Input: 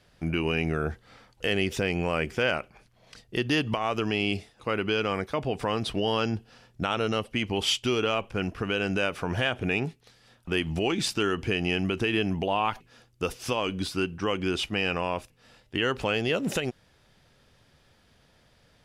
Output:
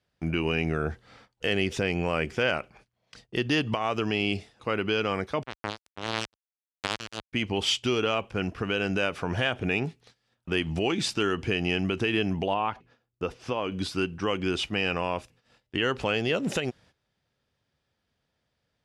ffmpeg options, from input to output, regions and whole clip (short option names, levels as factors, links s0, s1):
-filter_complex "[0:a]asettb=1/sr,asplit=3[s0][s1][s2];[s0]atrim=end=5.434[s3];[s1]atrim=start=5.43:end=7.33,asetpts=PTS-STARTPTS,afade=t=in:d=0.004:c=qsin,afade=t=out:st=1.896:d=0.004:c=qsin,highpass=120,bandreject=f=60:t=h:w=6,bandreject=f=120:t=h:w=6,bandreject=f=180:t=h:w=6,bandreject=f=240:t=h:w=6,acrusher=bits=2:mix=0:aa=0.5[s4];[s2]atrim=start=7.326[s5];[s3][s4]acrossfade=d=0.004:c1=hsin:c2=qsin[s6];[s6][s5]acrossfade=d=0.004:c1=qsin:c2=hsin,asettb=1/sr,asplit=3[s7][s8][s9];[s7]atrim=end=12.544[s10];[s8]atrim=start=12.54:end=13.72,asetpts=PTS-STARTPTS,afade=t=in:d=0.004:c=qsin,afade=t=out:st=1.176:d=0.004:c=qsin,lowpass=f=1600:p=1,lowshelf=f=250:g=-2.5[s11];[s9]atrim=start=13.716[s12];[s10][s11]acrossfade=d=0.004:c1=hsin:c2=qsin[s13];[s13][s12]acrossfade=d=0.004:c1=qsin:c2=hsin,highpass=44,agate=range=0.158:threshold=0.002:ratio=16:detection=peak,lowpass=8900"